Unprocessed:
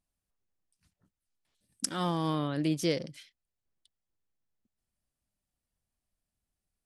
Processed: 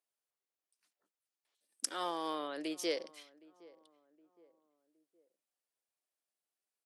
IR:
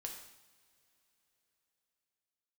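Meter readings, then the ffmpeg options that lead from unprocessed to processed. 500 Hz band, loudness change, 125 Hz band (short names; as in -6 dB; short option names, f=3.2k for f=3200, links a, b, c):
-4.5 dB, -6.5 dB, -32.0 dB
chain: -filter_complex "[0:a]highpass=f=370:w=0.5412,highpass=f=370:w=1.3066,asplit=2[a][b];[b]adelay=766,lowpass=f=1.1k:p=1,volume=-21.5dB,asplit=2[c][d];[d]adelay=766,lowpass=f=1.1k:p=1,volume=0.45,asplit=2[e][f];[f]adelay=766,lowpass=f=1.1k:p=1,volume=0.45[g];[c][e][g]amix=inputs=3:normalize=0[h];[a][h]amix=inputs=2:normalize=0,volume=-3.5dB"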